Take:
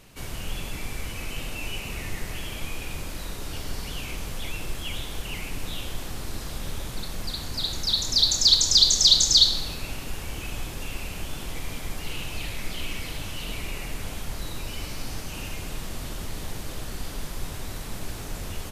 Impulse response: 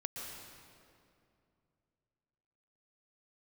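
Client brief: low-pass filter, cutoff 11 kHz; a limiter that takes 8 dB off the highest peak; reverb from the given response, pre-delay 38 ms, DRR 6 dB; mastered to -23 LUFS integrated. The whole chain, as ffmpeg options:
-filter_complex "[0:a]lowpass=11000,alimiter=limit=0.237:level=0:latency=1,asplit=2[s0][s1];[1:a]atrim=start_sample=2205,adelay=38[s2];[s1][s2]afir=irnorm=-1:irlink=0,volume=0.473[s3];[s0][s3]amix=inputs=2:normalize=0,volume=1.88"

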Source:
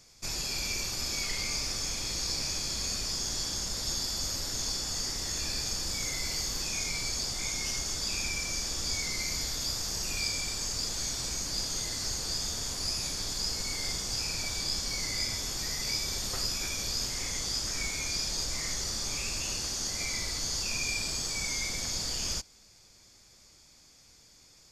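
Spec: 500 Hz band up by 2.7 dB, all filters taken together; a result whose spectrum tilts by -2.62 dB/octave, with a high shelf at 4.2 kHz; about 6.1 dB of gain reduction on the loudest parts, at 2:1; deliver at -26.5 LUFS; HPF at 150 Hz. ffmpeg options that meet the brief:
-af "highpass=150,equalizer=f=500:t=o:g=3.5,highshelf=f=4200:g=-6.5,acompressor=threshold=0.00708:ratio=2,volume=4.47"

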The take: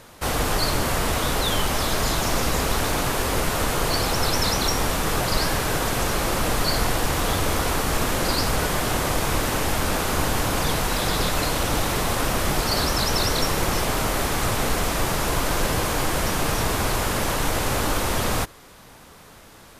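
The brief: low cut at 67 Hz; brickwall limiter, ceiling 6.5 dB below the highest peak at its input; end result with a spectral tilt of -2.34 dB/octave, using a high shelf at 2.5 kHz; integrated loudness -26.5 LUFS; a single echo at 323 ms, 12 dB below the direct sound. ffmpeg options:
-af "highpass=67,highshelf=f=2500:g=7.5,alimiter=limit=0.237:level=0:latency=1,aecho=1:1:323:0.251,volume=0.501"

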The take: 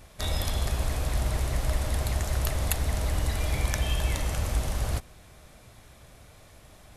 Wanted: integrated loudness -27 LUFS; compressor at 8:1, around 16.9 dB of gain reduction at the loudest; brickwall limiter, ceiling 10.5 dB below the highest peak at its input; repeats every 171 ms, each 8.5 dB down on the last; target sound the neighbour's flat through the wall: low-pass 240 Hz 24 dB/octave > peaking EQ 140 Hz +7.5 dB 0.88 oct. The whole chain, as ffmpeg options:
-af "acompressor=threshold=0.01:ratio=8,alimiter=level_in=3.98:limit=0.0631:level=0:latency=1,volume=0.251,lowpass=f=240:w=0.5412,lowpass=f=240:w=1.3066,equalizer=f=140:t=o:w=0.88:g=7.5,aecho=1:1:171|342|513|684:0.376|0.143|0.0543|0.0206,volume=8.91"

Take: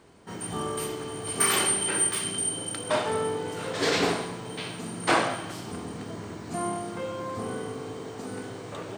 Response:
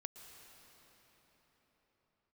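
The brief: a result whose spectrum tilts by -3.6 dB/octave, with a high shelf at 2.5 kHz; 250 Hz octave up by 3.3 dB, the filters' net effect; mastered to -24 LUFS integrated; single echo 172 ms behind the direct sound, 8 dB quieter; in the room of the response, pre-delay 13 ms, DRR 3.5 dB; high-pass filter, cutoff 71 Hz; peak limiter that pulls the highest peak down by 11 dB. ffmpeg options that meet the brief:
-filter_complex "[0:a]highpass=71,equalizer=f=250:t=o:g=4.5,highshelf=f=2500:g=-3.5,alimiter=limit=0.1:level=0:latency=1,aecho=1:1:172:0.398,asplit=2[s0][s1];[1:a]atrim=start_sample=2205,adelay=13[s2];[s1][s2]afir=irnorm=-1:irlink=0,volume=1.06[s3];[s0][s3]amix=inputs=2:normalize=0,volume=1.78"

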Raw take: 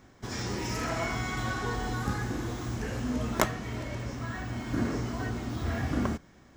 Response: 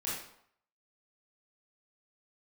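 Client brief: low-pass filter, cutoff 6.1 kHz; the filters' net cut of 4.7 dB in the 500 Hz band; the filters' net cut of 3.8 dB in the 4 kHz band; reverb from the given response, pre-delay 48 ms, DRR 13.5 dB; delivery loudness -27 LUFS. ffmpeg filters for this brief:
-filter_complex "[0:a]lowpass=6100,equalizer=f=500:t=o:g=-6.5,equalizer=f=4000:t=o:g=-4,asplit=2[s0][s1];[1:a]atrim=start_sample=2205,adelay=48[s2];[s1][s2]afir=irnorm=-1:irlink=0,volume=0.141[s3];[s0][s3]amix=inputs=2:normalize=0,volume=2.24"

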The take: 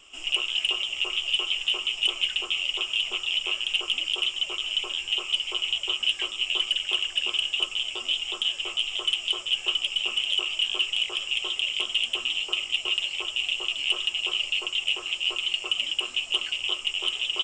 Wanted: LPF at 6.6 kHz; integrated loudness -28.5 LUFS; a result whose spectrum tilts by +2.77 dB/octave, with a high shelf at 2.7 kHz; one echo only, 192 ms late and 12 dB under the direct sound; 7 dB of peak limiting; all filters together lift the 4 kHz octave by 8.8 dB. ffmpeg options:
-af "lowpass=6600,highshelf=f=2700:g=7.5,equalizer=f=4000:t=o:g=8,alimiter=limit=0.355:level=0:latency=1,aecho=1:1:192:0.251,volume=0.316"

